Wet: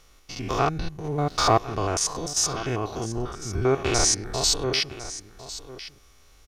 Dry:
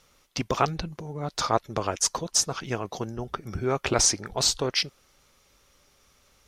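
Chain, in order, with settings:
spectrum averaged block by block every 100 ms
low-shelf EQ 64 Hz +10 dB
comb filter 2.7 ms, depth 36%
0:01.04–0:01.59: leveller curve on the samples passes 1
single-tap delay 1,053 ms −15 dB
level +4 dB

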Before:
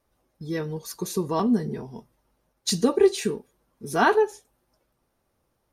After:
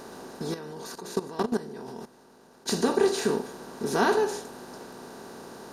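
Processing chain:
compressor on every frequency bin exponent 0.4
0:00.54–0:02.68: output level in coarse steps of 16 dB
level −7.5 dB

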